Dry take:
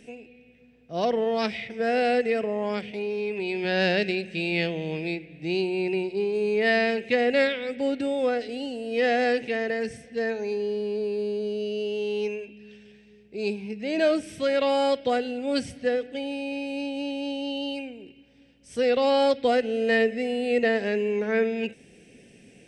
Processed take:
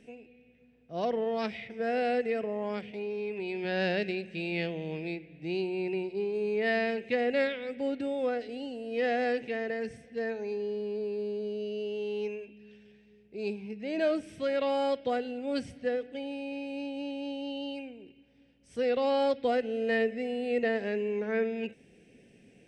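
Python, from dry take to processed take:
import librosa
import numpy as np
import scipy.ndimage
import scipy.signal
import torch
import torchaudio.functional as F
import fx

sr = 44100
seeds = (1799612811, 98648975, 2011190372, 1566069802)

y = fx.high_shelf(x, sr, hz=3900.0, db=-8.0)
y = F.gain(torch.from_numpy(y), -5.5).numpy()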